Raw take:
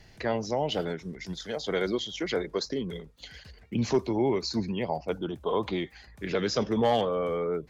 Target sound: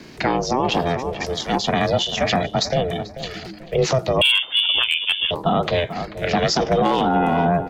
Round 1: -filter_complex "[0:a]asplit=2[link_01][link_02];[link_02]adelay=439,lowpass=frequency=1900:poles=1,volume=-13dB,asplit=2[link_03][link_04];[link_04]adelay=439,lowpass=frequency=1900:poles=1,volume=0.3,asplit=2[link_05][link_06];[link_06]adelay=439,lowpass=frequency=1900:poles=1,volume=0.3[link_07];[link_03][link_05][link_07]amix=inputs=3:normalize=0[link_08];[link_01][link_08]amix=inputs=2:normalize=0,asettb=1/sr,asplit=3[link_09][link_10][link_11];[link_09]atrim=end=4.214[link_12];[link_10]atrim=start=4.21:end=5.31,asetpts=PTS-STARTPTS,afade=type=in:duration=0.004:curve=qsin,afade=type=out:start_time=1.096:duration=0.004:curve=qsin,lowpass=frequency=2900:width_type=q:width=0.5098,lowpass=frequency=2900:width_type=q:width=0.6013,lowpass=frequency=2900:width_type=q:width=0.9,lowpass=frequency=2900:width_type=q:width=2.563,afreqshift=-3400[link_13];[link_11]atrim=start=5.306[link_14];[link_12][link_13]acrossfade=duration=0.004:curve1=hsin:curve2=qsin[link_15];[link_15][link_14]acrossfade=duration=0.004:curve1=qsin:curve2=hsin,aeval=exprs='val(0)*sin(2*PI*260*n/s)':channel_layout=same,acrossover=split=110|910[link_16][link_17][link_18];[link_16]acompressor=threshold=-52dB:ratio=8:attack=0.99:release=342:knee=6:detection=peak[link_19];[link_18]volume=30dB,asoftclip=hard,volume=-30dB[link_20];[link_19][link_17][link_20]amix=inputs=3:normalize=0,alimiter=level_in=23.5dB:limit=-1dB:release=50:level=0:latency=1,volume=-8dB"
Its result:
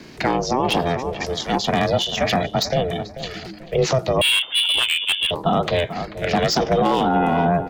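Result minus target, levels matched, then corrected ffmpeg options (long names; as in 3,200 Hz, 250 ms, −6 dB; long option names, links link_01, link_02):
gain into a clipping stage and back: distortion +15 dB
-filter_complex "[0:a]asplit=2[link_01][link_02];[link_02]adelay=439,lowpass=frequency=1900:poles=1,volume=-13dB,asplit=2[link_03][link_04];[link_04]adelay=439,lowpass=frequency=1900:poles=1,volume=0.3,asplit=2[link_05][link_06];[link_06]adelay=439,lowpass=frequency=1900:poles=1,volume=0.3[link_07];[link_03][link_05][link_07]amix=inputs=3:normalize=0[link_08];[link_01][link_08]amix=inputs=2:normalize=0,asettb=1/sr,asplit=3[link_09][link_10][link_11];[link_09]atrim=end=4.214[link_12];[link_10]atrim=start=4.21:end=5.31,asetpts=PTS-STARTPTS,afade=type=in:duration=0.004:curve=qsin,afade=type=out:start_time=1.096:duration=0.004:curve=qsin,lowpass=frequency=2900:width_type=q:width=0.5098,lowpass=frequency=2900:width_type=q:width=0.6013,lowpass=frequency=2900:width_type=q:width=0.9,lowpass=frequency=2900:width_type=q:width=2.563,afreqshift=-3400[link_13];[link_11]atrim=start=5.306[link_14];[link_12][link_13]acrossfade=duration=0.004:curve1=hsin:curve2=qsin[link_15];[link_15][link_14]acrossfade=duration=0.004:curve1=qsin:curve2=hsin,aeval=exprs='val(0)*sin(2*PI*260*n/s)':channel_layout=same,acrossover=split=110|910[link_16][link_17][link_18];[link_16]acompressor=threshold=-52dB:ratio=8:attack=0.99:release=342:knee=6:detection=peak[link_19];[link_18]volume=21dB,asoftclip=hard,volume=-21dB[link_20];[link_19][link_17][link_20]amix=inputs=3:normalize=0,alimiter=level_in=23.5dB:limit=-1dB:release=50:level=0:latency=1,volume=-8dB"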